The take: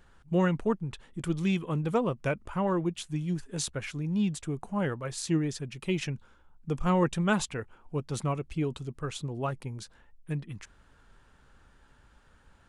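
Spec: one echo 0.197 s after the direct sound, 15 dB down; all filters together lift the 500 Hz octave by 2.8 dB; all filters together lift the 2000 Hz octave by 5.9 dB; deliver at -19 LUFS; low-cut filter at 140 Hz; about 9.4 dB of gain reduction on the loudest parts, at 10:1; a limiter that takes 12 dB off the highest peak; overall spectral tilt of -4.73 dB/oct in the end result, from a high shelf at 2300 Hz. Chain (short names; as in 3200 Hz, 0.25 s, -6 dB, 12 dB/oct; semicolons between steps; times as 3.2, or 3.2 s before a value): HPF 140 Hz; bell 500 Hz +3 dB; bell 2000 Hz +6 dB; high shelf 2300 Hz +4 dB; compressor 10:1, threshold -28 dBFS; limiter -28 dBFS; echo 0.197 s -15 dB; gain +19.5 dB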